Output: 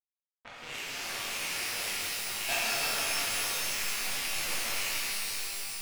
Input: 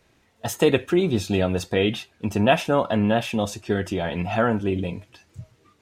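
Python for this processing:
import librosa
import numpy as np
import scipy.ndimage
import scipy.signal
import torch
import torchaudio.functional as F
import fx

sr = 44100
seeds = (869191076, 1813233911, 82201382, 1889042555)

y = fx.rattle_buzz(x, sr, strikes_db=-28.0, level_db=-14.0)
y = fx.filter_lfo_bandpass(y, sr, shape='saw_down', hz=1.7, low_hz=980.0, high_hz=3300.0, q=1.4)
y = fx.level_steps(y, sr, step_db=23)
y = fx.quant_companded(y, sr, bits=2)
y = fx.env_lowpass(y, sr, base_hz=1700.0, full_db=-33.0)
y = fx.rev_shimmer(y, sr, seeds[0], rt60_s=3.9, semitones=12, shimmer_db=-2, drr_db=-10.5)
y = F.gain(torch.from_numpy(y), -8.0).numpy()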